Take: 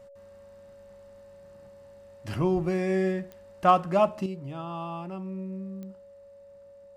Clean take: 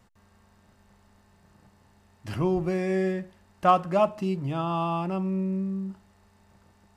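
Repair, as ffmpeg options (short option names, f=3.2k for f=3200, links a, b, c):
-af "adeclick=t=4,bandreject=f=560:w=30,asetnsamples=n=441:p=0,asendcmd='4.26 volume volume 8dB',volume=0dB"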